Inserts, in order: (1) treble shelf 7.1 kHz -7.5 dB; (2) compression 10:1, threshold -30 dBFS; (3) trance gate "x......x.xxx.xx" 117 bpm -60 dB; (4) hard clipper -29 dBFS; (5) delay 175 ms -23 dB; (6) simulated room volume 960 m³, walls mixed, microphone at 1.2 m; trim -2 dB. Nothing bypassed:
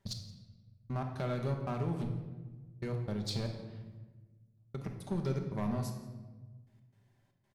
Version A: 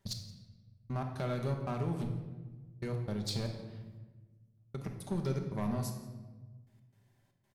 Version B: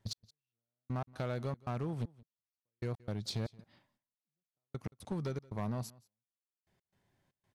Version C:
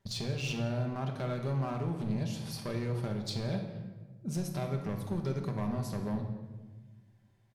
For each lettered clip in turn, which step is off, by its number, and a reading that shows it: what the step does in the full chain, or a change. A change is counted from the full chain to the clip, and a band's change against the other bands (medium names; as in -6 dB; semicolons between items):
1, 8 kHz band +3.0 dB; 6, echo-to-direct -2.5 dB to -23.0 dB; 3, 2 kHz band +2.5 dB